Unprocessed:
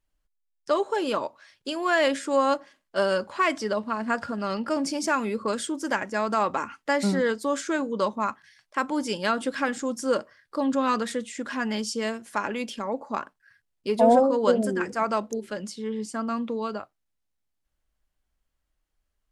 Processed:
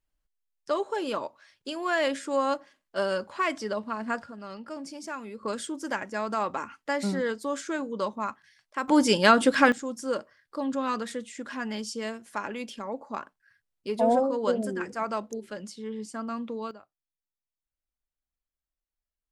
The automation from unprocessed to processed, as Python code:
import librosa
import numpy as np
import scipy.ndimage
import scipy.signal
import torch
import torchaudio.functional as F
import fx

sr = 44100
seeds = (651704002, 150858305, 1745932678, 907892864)

y = fx.gain(x, sr, db=fx.steps((0.0, -4.0), (4.22, -12.0), (5.43, -4.5), (8.88, 7.0), (9.72, -5.0), (16.71, -15.5)))